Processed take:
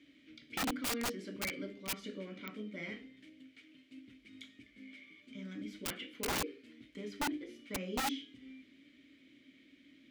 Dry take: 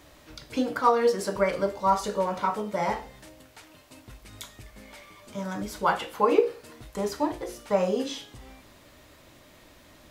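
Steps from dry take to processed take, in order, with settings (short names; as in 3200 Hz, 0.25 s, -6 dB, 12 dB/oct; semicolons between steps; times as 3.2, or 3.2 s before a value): notches 50/100/150/200/250/300/350/400/450 Hz; wrapped overs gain 14.5 dB; vowel filter i; wrapped overs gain 33.5 dB; 1.15–3.17 mismatched tape noise reduction decoder only; gain +4 dB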